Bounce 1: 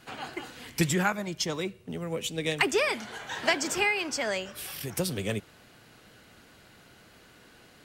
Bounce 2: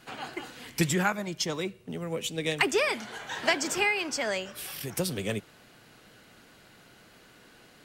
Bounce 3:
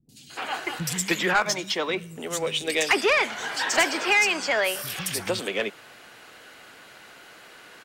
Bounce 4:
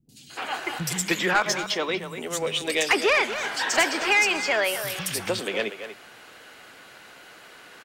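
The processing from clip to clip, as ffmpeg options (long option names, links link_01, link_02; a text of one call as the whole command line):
ffmpeg -i in.wav -af "equalizer=frequency=76:width_type=o:width=0.6:gain=-8" out.wav
ffmpeg -i in.wav -filter_complex "[0:a]acrossover=split=200|4600[link_01][link_02][link_03];[link_03]adelay=90[link_04];[link_02]adelay=300[link_05];[link_01][link_05][link_04]amix=inputs=3:normalize=0,asplit=2[link_06][link_07];[link_07]highpass=frequency=720:poles=1,volume=16dB,asoftclip=type=tanh:threshold=-10.5dB[link_08];[link_06][link_08]amix=inputs=2:normalize=0,lowpass=frequency=6800:poles=1,volume=-6dB" out.wav
ffmpeg -i in.wav -filter_complex "[0:a]asplit=2[link_01][link_02];[link_02]adelay=240,highpass=300,lowpass=3400,asoftclip=type=hard:threshold=-19.5dB,volume=-9dB[link_03];[link_01][link_03]amix=inputs=2:normalize=0" out.wav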